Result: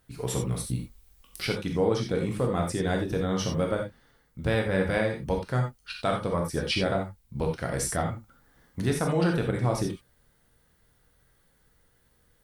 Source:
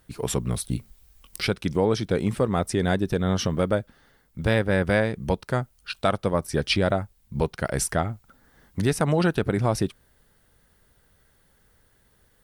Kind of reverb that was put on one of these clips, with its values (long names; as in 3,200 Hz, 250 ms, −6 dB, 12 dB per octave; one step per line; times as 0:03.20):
reverb whose tail is shaped and stops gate 110 ms flat, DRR 1 dB
level −6 dB